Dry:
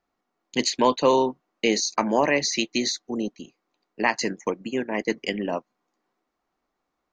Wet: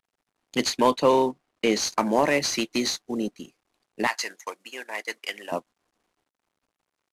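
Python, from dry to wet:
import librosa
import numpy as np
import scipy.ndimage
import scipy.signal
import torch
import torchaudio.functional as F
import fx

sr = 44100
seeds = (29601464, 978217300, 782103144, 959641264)

y = fx.cvsd(x, sr, bps=64000)
y = fx.high_shelf(y, sr, hz=7200.0, db=-7.5, at=(0.91, 1.8))
y = fx.highpass(y, sr, hz=920.0, slope=12, at=(4.07, 5.52))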